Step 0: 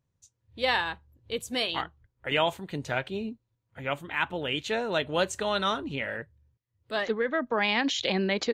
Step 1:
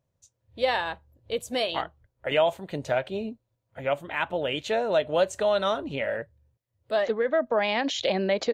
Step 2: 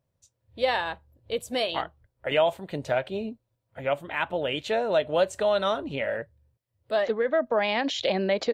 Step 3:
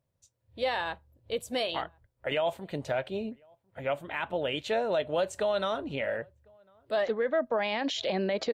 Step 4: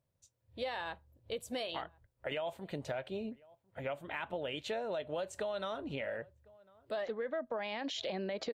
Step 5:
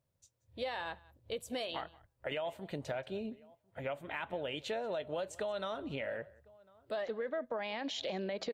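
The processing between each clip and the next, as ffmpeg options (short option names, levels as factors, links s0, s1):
-af "equalizer=f=610:t=o:w=0.66:g=11.5,acompressor=threshold=0.0562:ratio=1.5"
-af "equalizer=f=6500:w=5.9:g=-5"
-filter_complex "[0:a]alimiter=limit=0.133:level=0:latency=1:release=14,asplit=2[s0][s1];[s1]adelay=1050,volume=0.0316,highshelf=f=4000:g=-23.6[s2];[s0][s2]amix=inputs=2:normalize=0,volume=0.75"
-af "acompressor=threshold=0.02:ratio=3,volume=0.75"
-af "aecho=1:1:181:0.0708"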